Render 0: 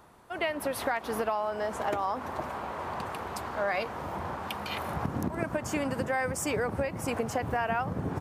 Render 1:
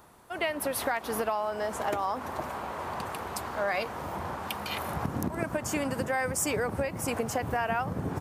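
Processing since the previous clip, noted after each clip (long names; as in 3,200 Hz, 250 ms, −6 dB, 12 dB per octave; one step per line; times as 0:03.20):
high-shelf EQ 6,200 Hz +8 dB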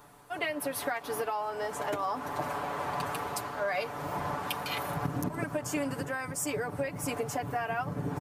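comb filter 6.9 ms, depth 78%
speech leveller within 4 dB 0.5 s
level −4 dB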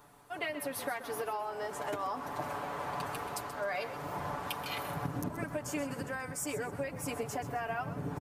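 echo with shifted repeats 130 ms, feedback 32%, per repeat −36 Hz, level −12.5 dB
level −4 dB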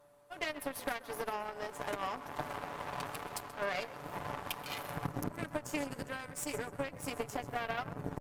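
steady tone 580 Hz −53 dBFS
harmonic generator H 5 −11 dB, 6 −20 dB, 7 −11 dB, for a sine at −19.5 dBFS
level −2.5 dB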